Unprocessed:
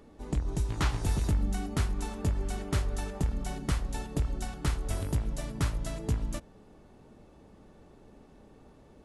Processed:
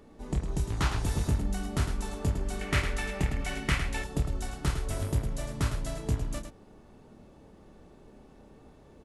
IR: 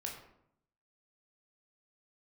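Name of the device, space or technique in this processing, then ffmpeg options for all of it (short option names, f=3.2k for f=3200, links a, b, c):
slapback doubling: -filter_complex "[0:a]asplit=3[a][b][c];[b]adelay=29,volume=-7.5dB[d];[c]adelay=107,volume=-8dB[e];[a][d][e]amix=inputs=3:normalize=0,asettb=1/sr,asplit=3[f][g][h];[f]atrim=end=2.614[i];[g]atrim=start=2.61:end=4.04,asetpts=PTS-STARTPTS,afade=t=in:d=0.004:c=qsin,afade=t=out:st=1.426:d=0.004:c=qsin,equalizer=f=2.2k:w=1.3:g=14[j];[h]atrim=start=4.036[k];[i][j]acrossfade=d=0.004:c1=hsin:c2=qsin[l];[l][k]acrossfade=d=0.004:c1=qsin:c2=hsin"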